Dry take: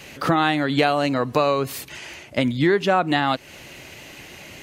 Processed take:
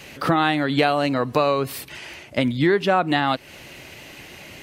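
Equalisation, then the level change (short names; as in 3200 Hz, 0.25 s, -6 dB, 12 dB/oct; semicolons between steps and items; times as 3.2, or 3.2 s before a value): dynamic EQ 6700 Hz, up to -7 dB, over -56 dBFS, Q 4.6; 0.0 dB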